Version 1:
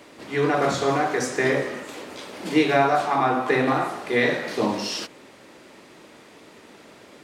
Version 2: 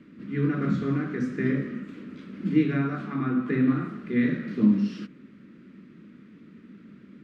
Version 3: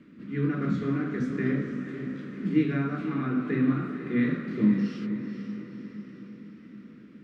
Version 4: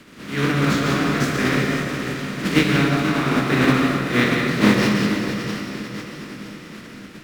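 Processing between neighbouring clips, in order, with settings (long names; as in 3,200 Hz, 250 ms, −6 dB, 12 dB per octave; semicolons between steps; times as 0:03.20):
drawn EQ curve 110 Hz 0 dB, 200 Hz +13 dB, 820 Hz −28 dB, 1,300 Hz −7 dB, 2,400 Hz −11 dB, 8,900 Hz −29 dB; level −1.5 dB
feedback delay with all-pass diffusion 492 ms, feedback 54%, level −9 dB; level −2 dB
compressing power law on the bin magnitudes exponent 0.49; convolution reverb RT60 1.2 s, pre-delay 137 ms, DRR 3 dB; linearly interpolated sample-rate reduction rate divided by 2×; level +6 dB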